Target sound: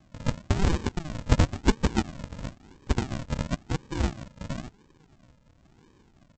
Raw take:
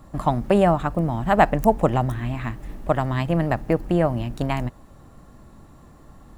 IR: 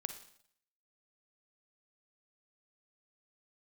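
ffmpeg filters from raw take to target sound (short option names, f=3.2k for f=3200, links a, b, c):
-af "highpass=680,aresample=16000,acrusher=samples=33:mix=1:aa=0.000001:lfo=1:lforange=19.8:lforate=0.97,aresample=44100"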